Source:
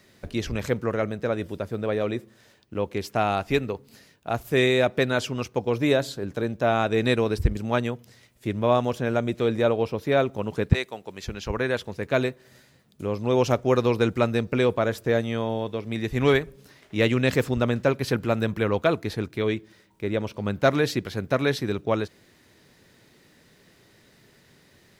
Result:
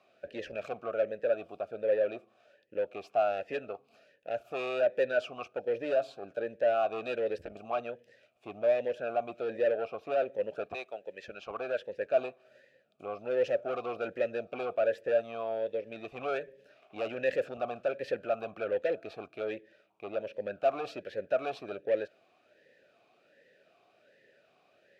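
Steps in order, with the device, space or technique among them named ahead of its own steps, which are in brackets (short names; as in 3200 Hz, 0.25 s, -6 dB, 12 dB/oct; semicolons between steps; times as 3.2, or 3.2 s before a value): talk box (tube stage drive 24 dB, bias 0.45; vowel sweep a-e 1.3 Hz); gain +7.5 dB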